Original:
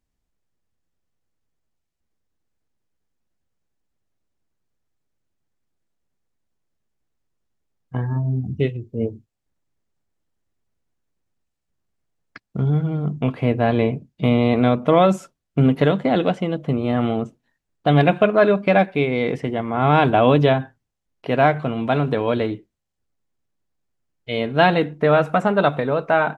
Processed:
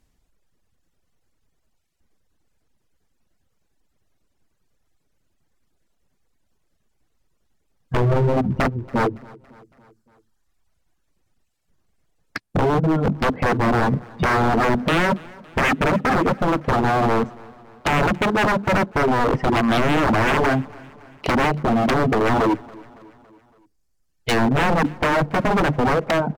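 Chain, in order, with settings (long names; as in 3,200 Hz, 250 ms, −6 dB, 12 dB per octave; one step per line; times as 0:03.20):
reverb reduction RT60 1.7 s
treble cut that deepens with the level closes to 360 Hz, closed at −18.5 dBFS
dynamic equaliser 260 Hz, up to +6 dB, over −38 dBFS, Q 2.6
in parallel at −2 dB: brickwall limiter −16.5 dBFS, peak gain reduction 11 dB
on the sum: wave folding −21 dBFS
on a send: repeating echo 280 ms, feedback 56%, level −23.5 dB
on the sum: level +8 dB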